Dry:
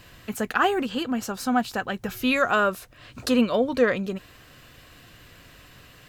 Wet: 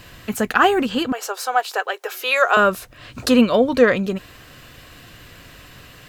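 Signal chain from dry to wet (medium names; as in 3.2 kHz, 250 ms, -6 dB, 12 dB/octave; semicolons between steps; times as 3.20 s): 1.12–2.57 s: elliptic high-pass 410 Hz, stop band 50 dB; trim +6.5 dB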